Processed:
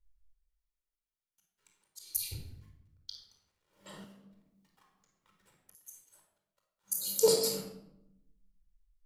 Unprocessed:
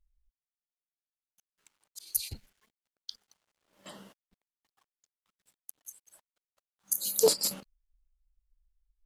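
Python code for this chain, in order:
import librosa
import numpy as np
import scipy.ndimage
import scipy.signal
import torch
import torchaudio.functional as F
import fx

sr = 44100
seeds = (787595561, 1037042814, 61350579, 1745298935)

y = fx.room_shoebox(x, sr, seeds[0], volume_m3=2300.0, walls='furnished', distance_m=4.6)
y = fx.band_squash(y, sr, depth_pct=70, at=(4.04, 5.75))
y = F.gain(torch.from_numpy(y), -6.0).numpy()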